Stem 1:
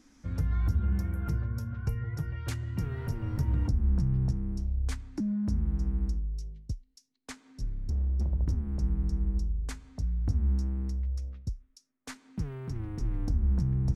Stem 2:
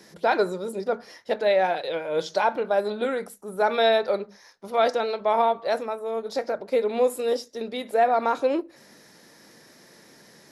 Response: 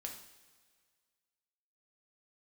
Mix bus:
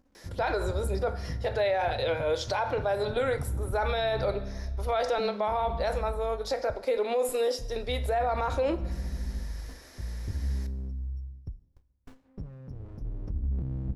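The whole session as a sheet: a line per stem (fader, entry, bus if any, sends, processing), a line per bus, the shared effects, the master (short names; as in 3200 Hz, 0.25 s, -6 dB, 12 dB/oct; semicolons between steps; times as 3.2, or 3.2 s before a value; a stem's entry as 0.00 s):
-6.5 dB, 0.00 s, send -8.5 dB, spectral gate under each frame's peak -30 dB strong; running maximum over 65 samples
-1.5 dB, 0.15 s, send -4 dB, HPF 380 Hz 12 dB/oct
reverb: on, pre-delay 3 ms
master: limiter -19.5 dBFS, peak gain reduction 11.5 dB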